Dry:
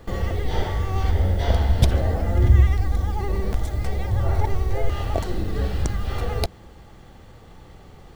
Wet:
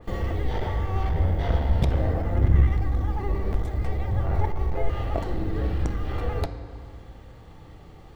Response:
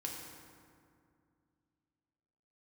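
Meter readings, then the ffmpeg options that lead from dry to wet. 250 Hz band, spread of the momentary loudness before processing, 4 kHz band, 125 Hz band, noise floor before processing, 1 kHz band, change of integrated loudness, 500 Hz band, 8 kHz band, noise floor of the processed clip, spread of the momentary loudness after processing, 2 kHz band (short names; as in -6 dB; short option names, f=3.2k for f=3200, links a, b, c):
-1.0 dB, 9 LU, -8.5 dB, -3.0 dB, -46 dBFS, -2.5 dB, -3.0 dB, -2.5 dB, under -10 dB, -46 dBFS, 8 LU, -4.0 dB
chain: -filter_complex "[0:a]bandreject=f=1.5k:w=28,aeval=exprs='clip(val(0),-1,0.106)':c=same,asplit=2[a][b];[1:a]atrim=start_sample=2205,lowpass=4.9k[c];[b][c]afir=irnorm=-1:irlink=0,volume=-3dB[d];[a][d]amix=inputs=2:normalize=0,adynamicequalizer=threshold=0.00398:dfrequency=3200:dqfactor=0.7:tfrequency=3200:tqfactor=0.7:attack=5:release=100:ratio=0.375:range=3.5:mode=cutabove:tftype=highshelf,volume=-5.5dB"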